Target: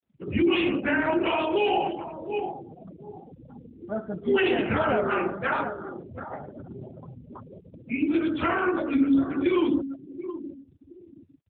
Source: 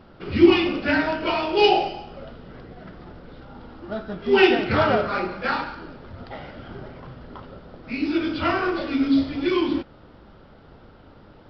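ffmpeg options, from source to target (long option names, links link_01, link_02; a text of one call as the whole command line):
ffmpeg -i in.wav -filter_complex "[0:a]asplit=3[link_01][link_02][link_03];[link_01]afade=type=out:start_time=2.45:duration=0.02[link_04];[link_02]bandreject=frequency=60:width_type=h:width=6,bandreject=frequency=120:width_type=h:width=6,bandreject=frequency=180:width_type=h:width=6,bandreject=frequency=240:width_type=h:width=6,bandreject=frequency=300:width_type=h:width=6,bandreject=frequency=360:width_type=h:width=6,bandreject=frequency=420:width_type=h:width=6,bandreject=frequency=480:width_type=h:width=6,bandreject=frequency=540:width_type=h:width=6,afade=type=in:start_time=2.45:duration=0.02,afade=type=out:start_time=3.3:duration=0.02[link_05];[link_03]afade=type=in:start_time=3.3:duration=0.02[link_06];[link_04][link_05][link_06]amix=inputs=3:normalize=0,asplit=3[link_07][link_08][link_09];[link_07]afade=type=out:start_time=7.15:duration=0.02[link_10];[link_08]acrusher=bits=7:mix=0:aa=0.5,afade=type=in:start_time=7.15:duration=0.02,afade=type=out:start_time=7.76:duration=0.02[link_11];[link_09]afade=type=in:start_time=7.76:duration=0.02[link_12];[link_10][link_11][link_12]amix=inputs=3:normalize=0,asettb=1/sr,asplit=3[link_13][link_14][link_15];[link_13]atrim=end=8.554[link_16];[link_14]atrim=start=8.55:end=9.37,asetpts=PTS-STARTPTS,afade=type=in:duration=0.004:curve=qsin,afade=type=out:start_time=0.816:duration=0.004:curve=qsin,highpass=frequency=140:width=0.5412,highpass=frequency=140:width=1.3066[link_17];[link_15]atrim=start=9.366[link_18];[link_16][link_17]acrossfade=duration=0.004:curve1=hsin:curve2=qsin[link_19];[link_19][link_18]acrossfade=duration=0.004:curve1=qsin:curve2=hsin,asplit=2[link_20][link_21];[link_21]adelay=724,lowpass=frequency=2000:poles=1,volume=-12dB,asplit=2[link_22][link_23];[link_23]adelay=724,lowpass=frequency=2000:poles=1,volume=0.25,asplit=2[link_24][link_25];[link_25]adelay=724,lowpass=frequency=2000:poles=1,volume=0.25[link_26];[link_22][link_24][link_26]amix=inputs=3:normalize=0[link_27];[link_20][link_27]amix=inputs=2:normalize=0,alimiter=limit=-14.5dB:level=0:latency=1:release=52,afftfilt=real='re*gte(hypot(re,im),0.0316)':imag='im*gte(hypot(re,im),0.0316)':win_size=1024:overlap=0.75,highshelf=frequency=2600:gain=4.5" -ar 8000 -c:a libopencore_amrnb -b:a 7950 out.amr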